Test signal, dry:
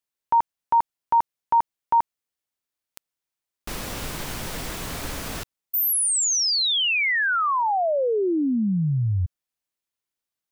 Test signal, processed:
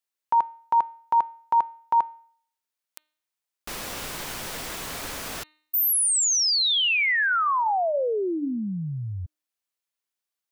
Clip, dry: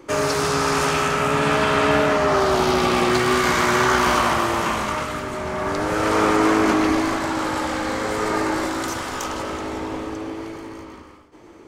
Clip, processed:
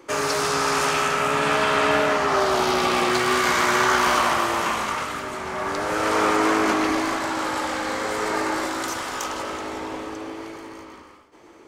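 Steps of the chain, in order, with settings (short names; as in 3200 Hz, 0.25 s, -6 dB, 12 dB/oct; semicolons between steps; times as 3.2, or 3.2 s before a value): low shelf 270 Hz -10.5 dB; de-hum 306.4 Hz, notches 14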